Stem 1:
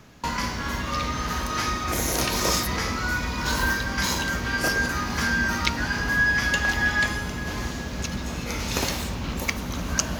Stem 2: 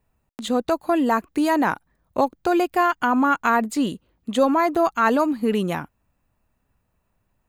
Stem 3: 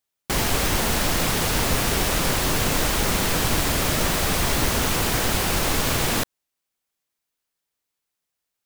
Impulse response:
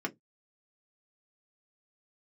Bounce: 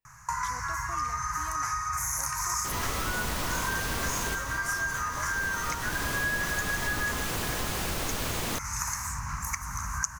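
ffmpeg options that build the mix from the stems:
-filter_complex "[0:a]firequalizer=gain_entry='entry(150,0);entry(220,-29);entry(480,-26);entry(1000,10);entry(2000,3);entry(3300,-22);entry(6100,10);entry(9000,10);entry(16000,-1)':delay=0.05:min_phase=1,adelay=50,volume=-1.5dB[link_01];[1:a]tiltshelf=frequency=900:gain=-8.5,volume=-18dB,asplit=3[link_02][link_03][link_04];[link_02]atrim=end=2.54,asetpts=PTS-STARTPTS,afade=type=out:start_time=2.536:duration=0.004:curve=hsin[link_05];[link_03]atrim=start=2.54:end=4.21,asetpts=PTS-STARTPTS,volume=0[link_06];[link_04]atrim=start=4.21,asetpts=PTS-STARTPTS,afade=type=in:duration=0.004:curve=hsin[link_07];[link_05][link_06][link_07]concat=n=3:v=0:a=1,asplit=2[link_08][link_09];[2:a]aeval=exprs='val(0)+0.01*(sin(2*PI*50*n/s)+sin(2*PI*2*50*n/s)/2+sin(2*PI*3*50*n/s)/3+sin(2*PI*4*50*n/s)/4+sin(2*PI*5*50*n/s)/5)':channel_layout=same,adelay=2350,volume=0dB[link_10];[link_09]apad=whole_len=485250[link_11];[link_10][link_11]sidechaincompress=threshold=-45dB:ratio=8:attack=9:release=411[link_12];[link_01][link_08][link_12]amix=inputs=3:normalize=0,acompressor=threshold=-31dB:ratio=3"

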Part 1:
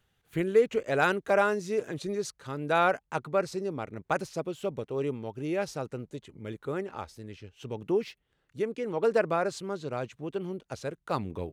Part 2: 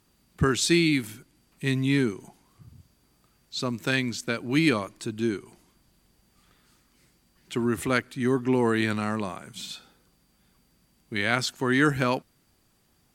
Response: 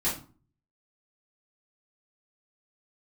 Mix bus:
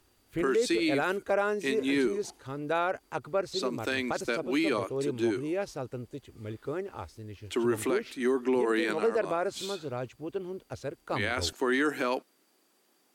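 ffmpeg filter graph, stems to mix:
-filter_complex "[0:a]equalizer=frequency=170:width=2.3:gain=-13,volume=-3.5dB,asplit=2[link_01][link_02];[1:a]highpass=frequency=320:width=0.5412,highpass=frequency=320:width=1.3066,volume=-1dB[link_03];[link_02]apad=whole_len=579561[link_04];[link_03][link_04]sidechaincompress=threshold=-34dB:ratio=8:attack=5.3:release=126[link_05];[link_01][link_05]amix=inputs=2:normalize=0,lowshelf=frequency=310:gain=9.5,alimiter=limit=-18.5dB:level=0:latency=1:release=66"

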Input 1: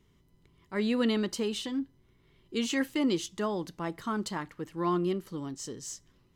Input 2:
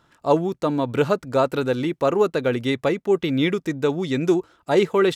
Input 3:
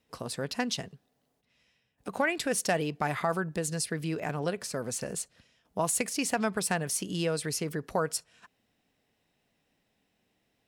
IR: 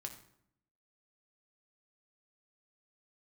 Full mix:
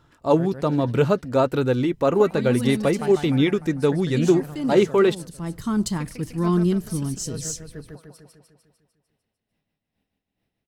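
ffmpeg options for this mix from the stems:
-filter_complex "[0:a]bass=frequency=250:gain=10,treble=frequency=4000:gain=11,adelay=1600,volume=0.5dB[link_01];[1:a]flanger=delay=2.2:depth=3.6:regen=-69:speed=0.6:shape=triangular,volume=2.5dB,asplit=2[link_02][link_03];[2:a]equalizer=frequency=7000:width_type=o:width=0.41:gain=-9.5,aeval=exprs='val(0)*pow(10,-30*(0.5-0.5*cos(2*PI*2.3*n/s))/20)':channel_layout=same,volume=-3.5dB,asplit=2[link_04][link_05];[link_05]volume=-3.5dB[link_06];[link_03]apad=whole_len=350621[link_07];[link_01][link_07]sidechaincompress=threshold=-29dB:ratio=8:attack=16:release=609[link_08];[link_06]aecho=0:1:150|300|450|600|750|900|1050|1200|1350:1|0.59|0.348|0.205|0.121|0.0715|0.0422|0.0249|0.0147[link_09];[link_08][link_02][link_04][link_09]amix=inputs=4:normalize=0,lowshelf=frequency=210:gain=10"

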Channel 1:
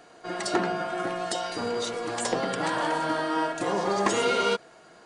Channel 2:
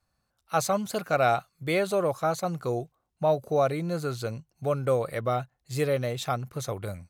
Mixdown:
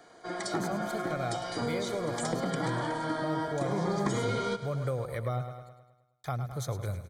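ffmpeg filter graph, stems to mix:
ffmpeg -i stem1.wav -i stem2.wav -filter_complex "[0:a]volume=-3dB,asplit=2[link_01][link_02];[link_02]volume=-16dB[link_03];[1:a]asubboost=boost=4:cutoff=100,volume=-8dB,asplit=3[link_04][link_05][link_06];[link_04]atrim=end=5.69,asetpts=PTS-STARTPTS,afade=type=out:start_time=5.686:duration=0.004:curve=hsin[link_07];[link_05]atrim=start=5.69:end=6.24,asetpts=PTS-STARTPTS,volume=0[link_08];[link_06]atrim=start=6.24,asetpts=PTS-STARTPTS,afade=type=in:duration=0.004:curve=hsin[link_09];[link_07][link_08][link_09]concat=n=3:v=0:a=1,asplit=2[link_10][link_11];[link_11]volume=-11.5dB[link_12];[link_03][link_12]amix=inputs=2:normalize=0,aecho=0:1:105|210|315|420|525|630|735|840:1|0.52|0.27|0.141|0.0731|0.038|0.0198|0.0103[link_13];[link_01][link_10][link_13]amix=inputs=3:normalize=0,dynaudnorm=framelen=430:gausssize=3:maxgain=5dB,asuperstop=centerf=2700:order=20:qfactor=6.4,acrossover=split=260[link_14][link_15];[link_15]acompressor=threshold=-33dB:ratio=4[link_16];[link_14][link_16]amix=inputs=2:normalize=0" out.wav

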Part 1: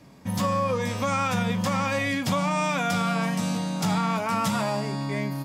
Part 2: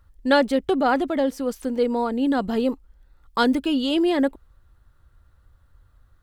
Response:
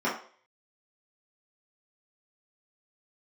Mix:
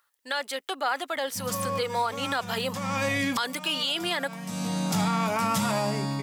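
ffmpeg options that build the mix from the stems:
-filter_complex "[0:a]adelay=1100,volume=-5dB[link_01];[1:a]highpass=1100,volume=0.5dB,asplit=2[link_02][link_03];[link_03]apad=whole_len=288614[link_04];[link_01][link_04]sidechaincompress=threshold=-43dB:ratio=5:attack=6.8:release=412[link_05];[link_05][link_02]amix=inputs=2:normalize=0,highshelf=frequency=6700:gain=7,dynaudnorm=framelen=380:gausssize=5:maxgain=6.5dB,alimiter=limit=-17dB:level=0:latency=1:release=56"

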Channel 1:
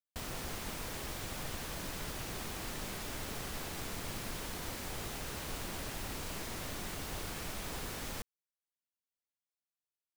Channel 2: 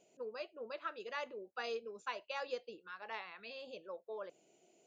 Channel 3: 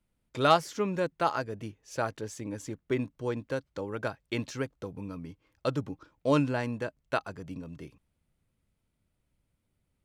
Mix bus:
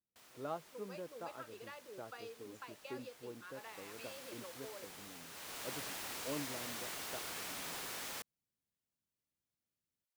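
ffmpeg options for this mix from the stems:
ffmpeg -i stem1.wav -i stem2.wav -i stem3.wav -filter_complex "[0:a]highpass=frequency=750:poles=1,afade=type=in:start_time=3.47:duration=0.6:silence=0.354813,afade=type=in:start_time=5.29:duration=0.44:silence=0.375837[link_01];[1:a]acompressor=threshold=-44dB:ratio=6,adelay=550,volume=-3.5dB[link_02];[2:a]bandpass=frequency=380:width_type=q:width=0.59:csg=0,volume=-16.5dB[link_03];[link_01][link_02][link_03]amix=inputs=3:normalize=0" out.wav

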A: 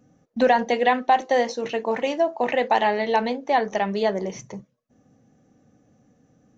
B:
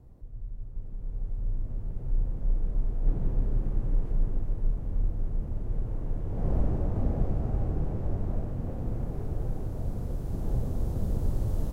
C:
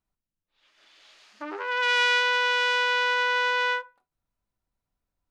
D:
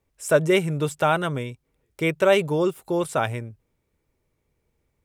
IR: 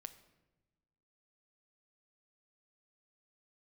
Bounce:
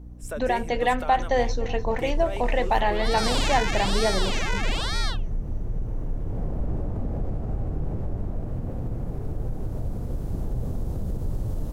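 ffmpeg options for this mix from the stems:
-filter_complex "[0:a]dynaudnorm=framelen=110:gausssize=11:maxgain=10.5dB,volume=-9.5dB,asplit=2[link_01][link_02];[link_02]volume=-18.5dB[link_03];[1:a]volume=2.5dB,asplit=2[link_04][link_05];[link_05]volume=-7.5dB[link_06];[2:a]aexciter=amount=4.6:drive=7.5:freq=5700,aeval=exprs='val(0)*sin(2*PI*1700*n/s+1700*0.7/1.1*sin(2*PI*1.1*n/s))':channel_layout=same,adelay=1350,volume=-3dB[link_07];[3:a]highpass=300,dynaudnorm=framelen=170:gausssize=3:maxgain=11.5dB,volume=-14dB[link_08];[link_04][link_08]amix=inputs=2:normalize=0,alimiter=limit=-23dB:level=0:latency=1:release=97,volume=0dB[link_09];[4:a]atrim=start_sample=2205[link_10];[link_06][link_10]afir=irnorm=-1:irlink=0[link_11];[link_03]aecho=0:1:298|596|894|1192|1490|1788|2086|2384:1|0.52|0.27|0.141|0.0731|0.038|0.0198|0.0103[link_12];[link_01][link_07][link_09][link_11][link_12]amix=inputs=5:normalize=0,aeval=exprs='val(0)+0.00891*(sin(2*PI*60*n/s)+sin(2*PI*2*60*n/s)/2+sin(2*PI*3*60*n/s)/3+sin(2*PI*4*60*n/s)/4+sin(2*PI*5*60*n/s)/5)':channel_layout=same"

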